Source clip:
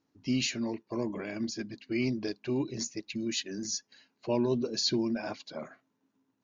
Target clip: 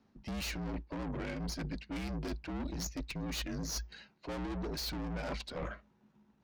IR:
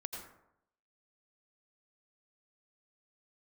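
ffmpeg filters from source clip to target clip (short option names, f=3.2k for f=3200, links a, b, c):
-af "adynamicsmooth=sensitivity=6:basefreq=4.6k,aeval=exprs='(tanh(89.1*val(0)+0.75)-tanh(0.75))/89.1':c=same,afreqshift=-57,areverse,acompressor=threshold=-49dB:ratio=6,areverse,volume=13dB"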